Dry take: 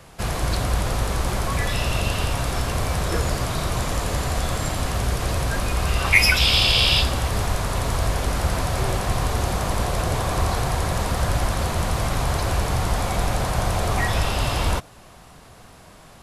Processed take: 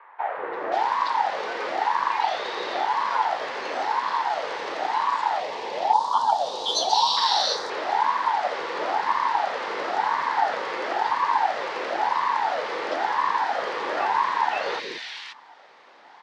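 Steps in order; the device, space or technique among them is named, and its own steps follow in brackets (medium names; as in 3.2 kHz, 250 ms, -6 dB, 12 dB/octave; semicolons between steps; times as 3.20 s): voice changer toy (ring modulator with a swept carrier 730 Hz, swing 45%, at 0.98 Hz; cabinet simulation 480–4600 Hz, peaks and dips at 590 Hz -3 dB, 870 Hz +6 dB, 1.9 kHz +5 dB); 5.40–7.17 s: FFT filter 240 Hz 0 dB, 340 Hz -5 dB, 880 Hz +3 dB, 2.1 kHz -29 dB, 3.7 kHz +1 dB, 9.7 kHz +10 dB; three bands offset in time mids, lows, highs 180/530 ms, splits 380/2100 Hz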